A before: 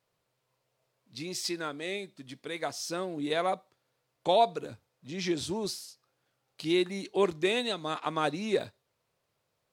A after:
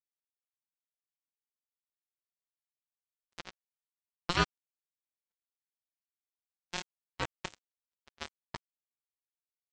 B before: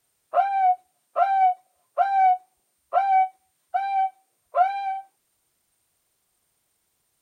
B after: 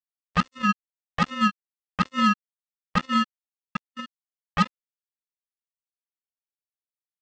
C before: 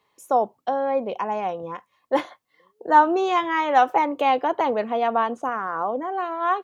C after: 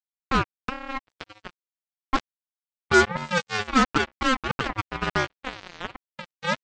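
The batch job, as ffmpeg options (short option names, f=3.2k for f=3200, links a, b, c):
-filter_complex "[0:a]highpass=100,bandreject=f=50:t=h:w=6,bandreject=f=100:t=h:w=6,bandreject=f=150:t=h:w=6,bandreject=f=200:t=h:w=6,asplit=2[a][b];[b]adelay=240,highpass=300,lowpass=3.4k,asoftclip=type=hard:threshold=-13dB,volume=-29dB[c];[a][c]amix=inputs=2:normalize=0,aresample=16000,acrusher=bits=2:mix=0:aa=0.5,aresample=44100,agate=range=-44dB:threshold=-43dB:ratio=16:detection=peak,aeval=exprs='val(0)*sin(2*PI*530*n/s)':c=same"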